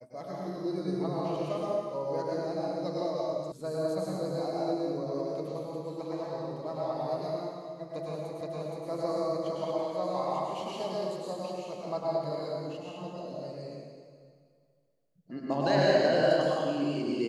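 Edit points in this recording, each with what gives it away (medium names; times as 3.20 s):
3.52 s: sound stops dead
8.41 s: repeat of the last 0.47 s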